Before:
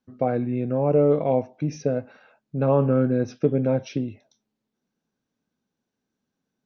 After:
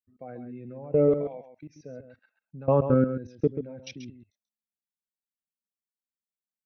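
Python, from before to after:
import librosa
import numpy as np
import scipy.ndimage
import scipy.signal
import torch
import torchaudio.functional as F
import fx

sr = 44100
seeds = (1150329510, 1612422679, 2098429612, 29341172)

y = fx.bin_expand(x, sr, power=1.5)
y = fx.highpass(y, sr, hz=1300.0, slope=6, at=(1.28, 1.69), fade=0.02)
y = fx.level_steps(y, sr, step_db=21)
y = y + 10.0 ** (-9.5 / 20.0) * np.pad(y, (int(135 * sr / 1000.0), 0))[:len(y)]
y = y * librosa.db_to_amplitude(1.5)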